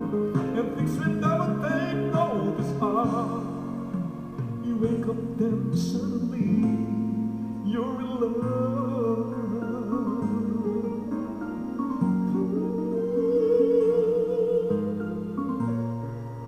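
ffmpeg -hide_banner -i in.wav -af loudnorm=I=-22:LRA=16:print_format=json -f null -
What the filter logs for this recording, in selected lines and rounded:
"input_i" : "-26.7",
"input_tp" : "-11.1",
"input_lra" : "3.3",
"input_thresh" : "-36.7",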